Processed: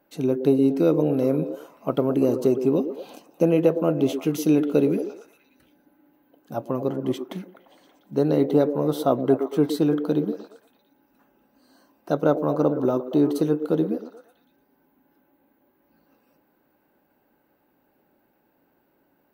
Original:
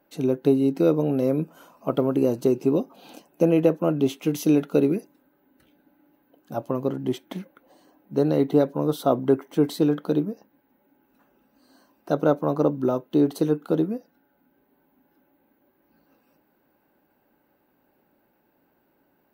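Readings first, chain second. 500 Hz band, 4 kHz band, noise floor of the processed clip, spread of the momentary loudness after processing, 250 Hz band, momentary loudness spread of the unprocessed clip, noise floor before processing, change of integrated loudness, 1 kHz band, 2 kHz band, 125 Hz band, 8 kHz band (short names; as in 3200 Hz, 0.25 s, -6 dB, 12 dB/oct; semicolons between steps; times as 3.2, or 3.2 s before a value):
+1.0 dB, 0.0 dB, -67 dBFS, 12 LU, +0.5 dB, 11 LU, -68 dBFS, +0.5 dB, +0.5 dB, 0.0 dB, 0.0 dB, 0.0 dB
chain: delay with a stepping band-pass 0.116 s, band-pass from 370 Hz, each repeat 0.7 oct, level -7 dB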